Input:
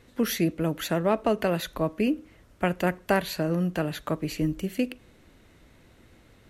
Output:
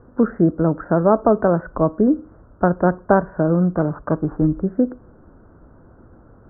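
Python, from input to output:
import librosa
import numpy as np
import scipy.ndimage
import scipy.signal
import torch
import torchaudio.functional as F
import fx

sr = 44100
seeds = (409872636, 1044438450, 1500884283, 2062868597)

y = fx.sample_sort(x, sr, block=16, at=(3.59, 4.45))
y = scipy.signal.sosfilt(scipy.signal.butter(12, 1500.0, 'lowpass', fs=sr, output='sos'), y)
y = F.gain(torch.from_numpy(y), 9.0).numpy()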